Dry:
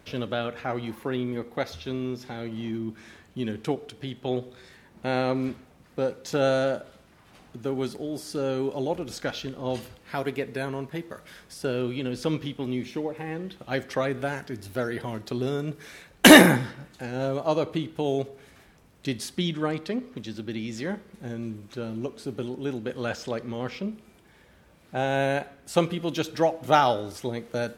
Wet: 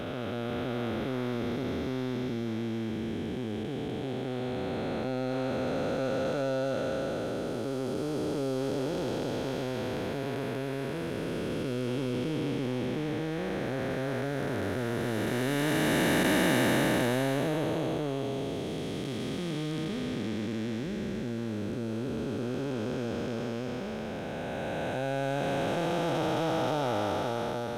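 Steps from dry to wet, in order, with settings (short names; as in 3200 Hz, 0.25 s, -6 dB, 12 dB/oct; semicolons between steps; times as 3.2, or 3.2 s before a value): time blur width 1.41 s; in parallel at -5 dB: overloaded stage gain 32.5 dB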